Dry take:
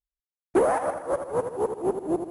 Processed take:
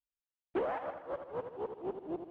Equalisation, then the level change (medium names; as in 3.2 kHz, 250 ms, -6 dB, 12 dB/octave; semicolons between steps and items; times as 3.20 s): four-pole ladder low-pass 3.6 kHz, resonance 50%; -3.5 dB